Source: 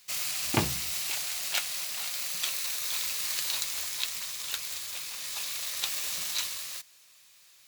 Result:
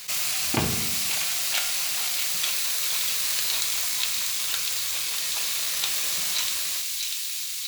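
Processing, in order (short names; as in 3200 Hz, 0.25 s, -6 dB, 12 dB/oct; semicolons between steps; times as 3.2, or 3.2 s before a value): thin delay 0.643 s, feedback 65%, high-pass 2400 Hz, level -7 dB; on a send at -7 dB: reverb RT60 0.85 s, pre-delay 3 ms; on the sum: fast leveller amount 50%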